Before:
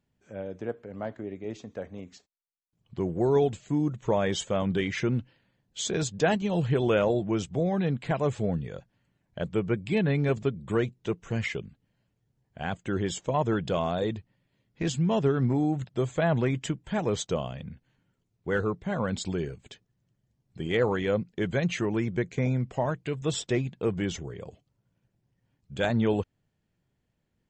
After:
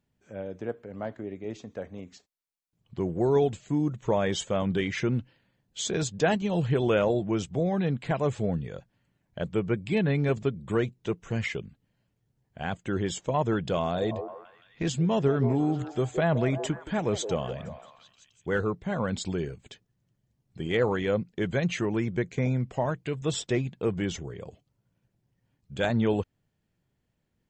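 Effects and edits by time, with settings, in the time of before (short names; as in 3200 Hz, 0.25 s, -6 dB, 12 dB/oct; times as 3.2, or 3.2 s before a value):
13.77–18.56 delay with a stepping band-pass 0.169 s, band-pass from 480 Hz, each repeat 0.7 oct, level -7 dB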